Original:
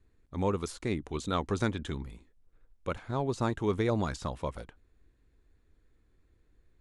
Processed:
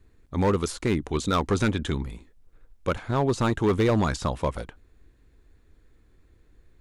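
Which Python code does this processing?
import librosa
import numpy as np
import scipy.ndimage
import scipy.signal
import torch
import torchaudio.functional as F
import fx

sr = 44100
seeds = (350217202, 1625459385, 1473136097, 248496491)

y = np.clip(10.0 ** (25.0 / 20.0) * x, -1.0, 1.0) / 10.0 ** (25.0 / 20.0)
y = F.gain(torch.from_numpy(y), 8.5).numpy()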